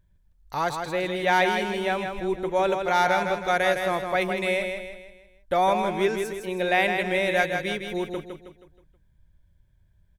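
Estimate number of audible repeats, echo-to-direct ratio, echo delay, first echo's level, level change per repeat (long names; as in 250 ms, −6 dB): 4, −5.0 dB, 159 ms, −6.0 dB, −7.5 dB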